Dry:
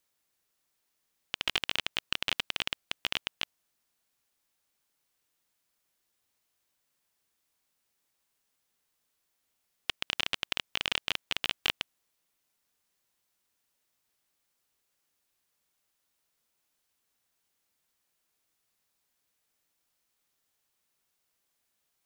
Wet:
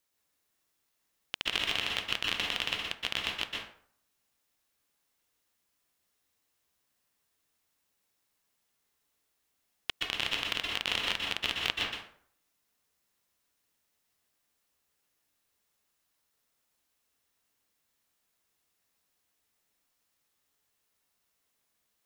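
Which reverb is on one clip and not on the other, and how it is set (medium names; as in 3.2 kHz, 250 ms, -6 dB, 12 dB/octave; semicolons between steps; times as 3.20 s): plate-style reverb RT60 0.59 s, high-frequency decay 0.6×, pre-delay 110 ms, DRR -1 dB; trim -2 dB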